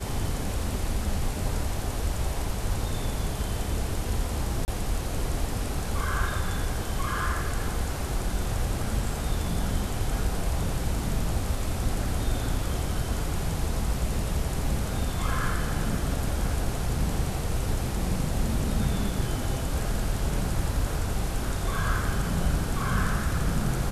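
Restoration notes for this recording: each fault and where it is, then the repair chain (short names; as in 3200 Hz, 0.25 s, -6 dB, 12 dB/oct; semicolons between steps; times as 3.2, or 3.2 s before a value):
4.65–4.68 gap 29 ms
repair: interpolate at 4.65, 29 ms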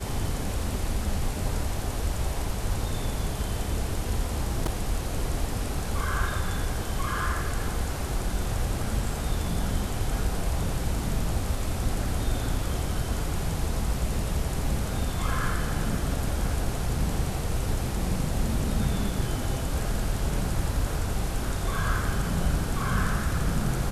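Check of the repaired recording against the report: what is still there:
none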